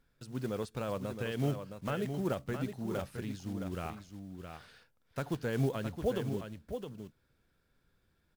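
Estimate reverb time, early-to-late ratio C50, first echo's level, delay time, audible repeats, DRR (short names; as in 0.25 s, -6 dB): none, none, -7.5 dB, 0.666 s, 1, none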